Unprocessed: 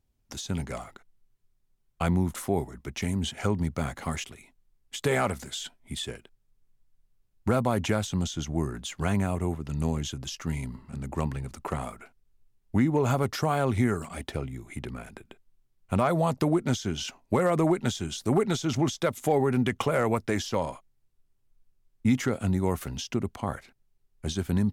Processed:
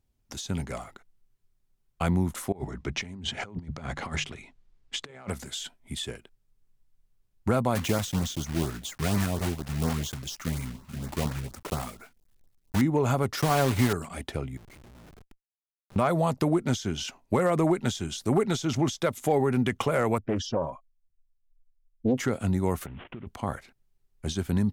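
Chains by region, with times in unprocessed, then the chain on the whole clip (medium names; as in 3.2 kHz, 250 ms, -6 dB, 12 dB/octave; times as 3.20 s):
2.52–5.29 s: low-pass 5.3 kHz + hum notches 50/100/150 Hz + compressor with a negative ratio -34 dBFS, ratio -0.5
7.75–12.82 s: block-companded coder 3-bit + LFO notch saw up 4.2 Hz 290–3500 Hz
13.37–13.93 s: block-companded coder 3-bit + comb 7 ms, depth 38%
14.57–15.96 s: compression 2:1, threshold -51 dBFS + Schmitt trigger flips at -50.5 dBFS
20.18–22.17 s: spectral contrast enhancement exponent 1.8 + level-controlled noise filter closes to 1.9 kHz, open at -25.5 dBFS + loudspeaker Doppler distortion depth 0.89 ms
22.86–23.27 s: CVSD coder 16 kbps + compression 5:1, threshold -37 dBFS
whole clip: none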